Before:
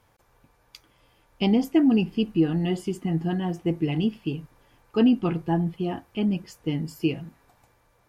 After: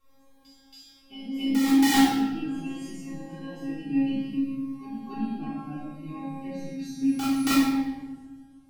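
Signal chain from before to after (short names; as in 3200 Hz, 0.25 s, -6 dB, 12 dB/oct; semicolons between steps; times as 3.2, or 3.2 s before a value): speed glide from 104% -> 82%; in parallel at 0 dB: compressor 16:1, threshold -34 dBFS, peak gain reduction 20 dB; on the sum: resonator 270 Hz, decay 0.73 s, mix 100%; wrapped overs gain 28.5 dB; reverse echo 0.277 s -8.5 dB; reverb RT60 1.2 s, pre-delay 3 ms, DRR -6.5 dB; cascading phaser falling 0.66 Hz; gain +6 dB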